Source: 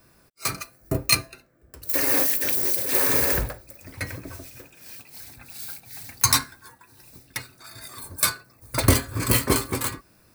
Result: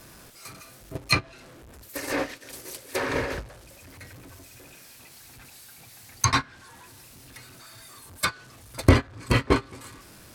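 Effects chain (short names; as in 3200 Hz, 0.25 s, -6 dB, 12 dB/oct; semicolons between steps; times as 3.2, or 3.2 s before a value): zero-crossing step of -22.5 dBFS; gate -17 dBFS, range -21 dB; treble ducked by the level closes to 2700 Hz, closed at -18.5 dBFS; gain +1.5 dB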